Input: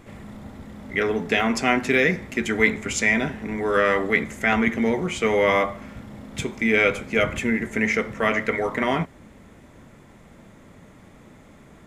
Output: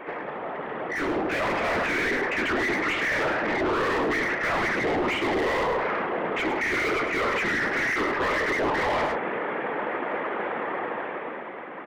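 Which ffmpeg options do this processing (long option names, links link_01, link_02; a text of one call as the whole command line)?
ffmpeg -i in.wav -filter_complex "[0:a]afftfilt=real='hypot(re,im)*cos(2*PI*random(0))':imag='hypot(re,im)*sin(2*PI*random(1))':win_size=512:overlap=0.75,highpass=frequency=420:width_type=q:width=0.5412,highpass=frequency=420:width_type=q:width=1.307,lowpass=frequency=3000:width_type=q:width=0.5176,lowpass=frequency=3000:width_type=q:width=0.7071,lowpass=frequency=3000:width_type=q:width=1.932,afreqshift=-120,asplit=2[link_01][link_02];[link_02]highpass=frequency=720:poles=1,volume=36dB,asoftclip=type=tanh:threshold=-12.5dB[link_03];[link_01][link_03]amix=inputs=2:normalize=0,lowpass=frequency=1000:poles=1,volume=-6dB,asplit=2[link_04][link_05];[link_05]aecho=0:1:104:0.316[link_06];[link_04][link_06]amix=inputs=2:normalize=0,dynaudnorm=framelen=130:gausssize=21:maxgain=15.5dB,asoftclip=type=tanh:threshold=-8dB,areverse,acompressor=threshold=-23dB:ratio=4,areverse,volume=-2.5dB" out.wav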